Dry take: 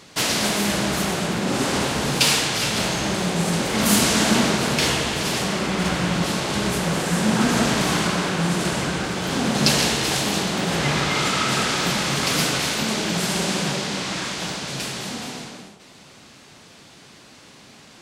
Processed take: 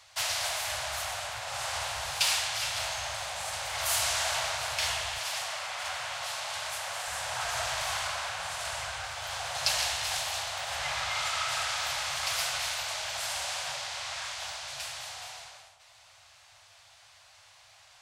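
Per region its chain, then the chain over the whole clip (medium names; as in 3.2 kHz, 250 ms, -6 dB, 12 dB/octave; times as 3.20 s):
5.18–7.08 s: high-pass 98 Hz + bass shelf 290 Hz -7 dB
whole clip: elliptic band-stop 100–660 Hz, stop band 60 dB; bass shelf 120 Hz -3.5 dB; trim -8 dB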